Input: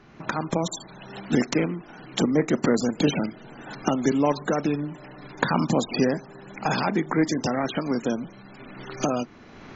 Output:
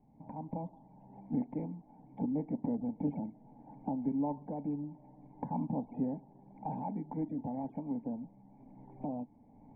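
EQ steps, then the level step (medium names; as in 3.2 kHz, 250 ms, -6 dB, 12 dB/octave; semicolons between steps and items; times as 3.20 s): cascade formant filter u; static phaser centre 1.3 kHz, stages 6; +3.0 dB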